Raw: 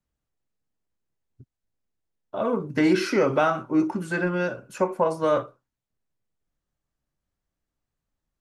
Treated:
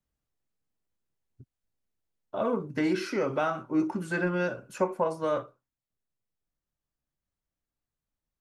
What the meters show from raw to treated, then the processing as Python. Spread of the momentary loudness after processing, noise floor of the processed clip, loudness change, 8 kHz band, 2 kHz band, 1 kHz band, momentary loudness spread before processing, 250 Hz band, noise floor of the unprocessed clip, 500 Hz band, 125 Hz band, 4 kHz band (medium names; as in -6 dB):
4 LU, under -85 dBFS, -5.5 dB, -5.5 dB, -4.5 dB, -5.5 dB, 8 LU, -5.5 dB, under -85 dBFS, -5.5 dB, -4.5 dB, -6.5 dB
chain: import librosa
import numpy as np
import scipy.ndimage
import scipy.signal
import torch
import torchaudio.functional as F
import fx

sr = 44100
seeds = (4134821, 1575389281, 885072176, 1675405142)

y = fx.rider(x, sr, range_db=3, speed_s=0.5)
y = y * 10.0 ** (-5.0 / 20.0)